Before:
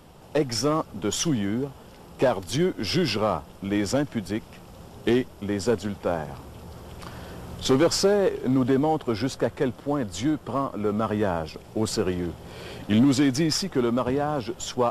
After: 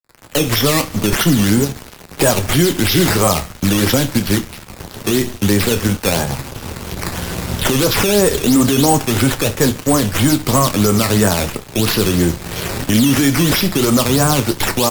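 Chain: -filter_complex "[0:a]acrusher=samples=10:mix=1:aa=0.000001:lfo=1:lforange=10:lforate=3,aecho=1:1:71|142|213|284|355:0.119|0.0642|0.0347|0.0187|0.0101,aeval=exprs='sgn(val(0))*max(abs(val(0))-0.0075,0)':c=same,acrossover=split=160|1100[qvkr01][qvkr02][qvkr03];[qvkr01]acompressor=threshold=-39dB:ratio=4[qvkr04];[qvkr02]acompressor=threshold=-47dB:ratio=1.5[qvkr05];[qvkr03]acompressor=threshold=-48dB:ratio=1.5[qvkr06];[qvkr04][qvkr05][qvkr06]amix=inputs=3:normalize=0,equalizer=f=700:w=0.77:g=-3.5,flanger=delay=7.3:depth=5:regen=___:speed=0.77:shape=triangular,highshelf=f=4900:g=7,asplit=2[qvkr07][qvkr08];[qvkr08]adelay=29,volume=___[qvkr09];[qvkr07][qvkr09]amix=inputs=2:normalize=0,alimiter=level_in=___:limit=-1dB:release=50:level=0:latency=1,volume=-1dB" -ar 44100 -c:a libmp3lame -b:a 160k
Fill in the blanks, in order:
-59, -14dB, 27.5dB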